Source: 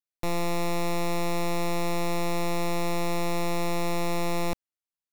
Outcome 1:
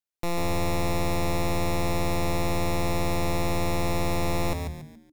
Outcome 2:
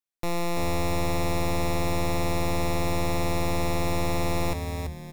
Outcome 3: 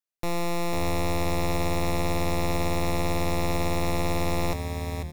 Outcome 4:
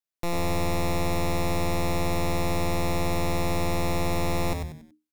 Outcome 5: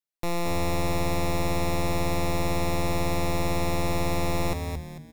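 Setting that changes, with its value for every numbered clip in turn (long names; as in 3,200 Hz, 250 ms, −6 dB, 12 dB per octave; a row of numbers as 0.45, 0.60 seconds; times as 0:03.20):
echo with shifted repeats, delay time: 141, 334, 494, 94, 223 milliseconds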